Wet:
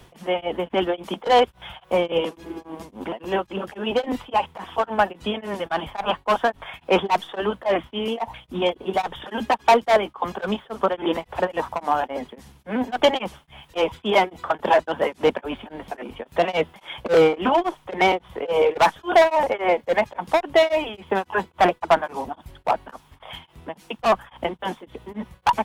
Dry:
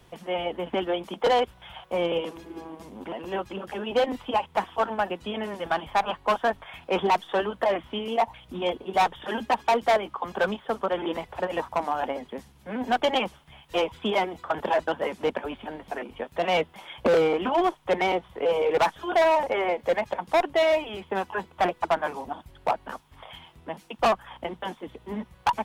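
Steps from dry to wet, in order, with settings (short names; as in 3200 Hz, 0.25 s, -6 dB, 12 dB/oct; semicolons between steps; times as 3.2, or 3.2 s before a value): beating tremolo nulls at 3.6 Hz; gain +7.5 dB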